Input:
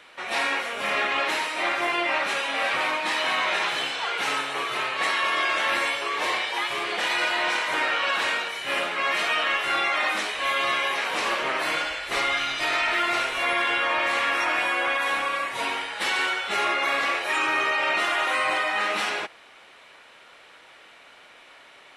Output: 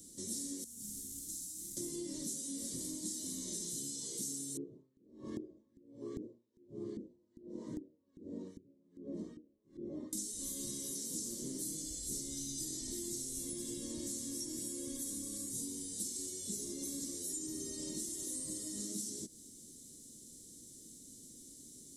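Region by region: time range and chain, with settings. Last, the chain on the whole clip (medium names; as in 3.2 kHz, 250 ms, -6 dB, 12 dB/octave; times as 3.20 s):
0.64–1.77 s: CVSD coder 64 kbps + amplifier tone stack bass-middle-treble 6-0-2
4.57–10.13 s: high-pass 57 Hz + LFO low-pass saw up 2.5 Hz 340–1700 Hz + logarithmic tremolo 1.3 Hz, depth 36 dB
whole clip: elliptic band-stop 260–6900 Hz, stop band 50 dB; bass shelf 370 Hz -6.5 dB; compression, threshold -54 dBFS; trim +15 dB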